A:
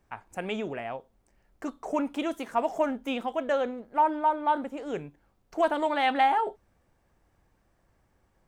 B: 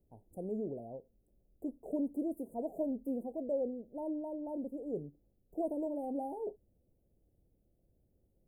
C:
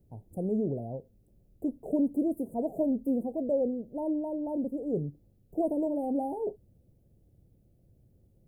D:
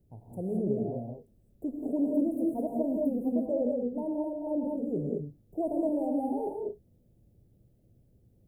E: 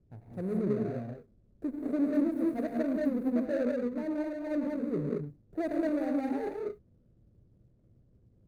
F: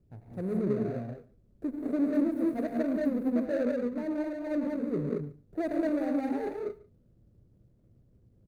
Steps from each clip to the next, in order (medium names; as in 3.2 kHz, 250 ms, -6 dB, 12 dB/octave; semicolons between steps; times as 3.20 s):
inverse Chebyshev band-stop 1.2–5.5 kHz, stop band 50 dB; trim -4 dB
peaking EQ 120 Hz +10 dB 1.5 oct; trim +5.5 dB
gated-style reverb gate 240 ms rising, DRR 0 dB; trim -3 dB
median filter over 41 samples
delay 144 ms -22 dB; trim +1 dB